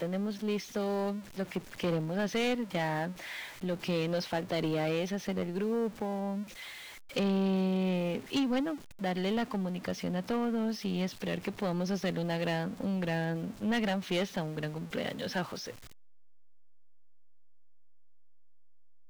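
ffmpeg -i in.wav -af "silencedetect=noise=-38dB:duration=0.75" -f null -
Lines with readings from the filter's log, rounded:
silence_start: 15.70
silence_end: 19.10 | silence_duration: 3.39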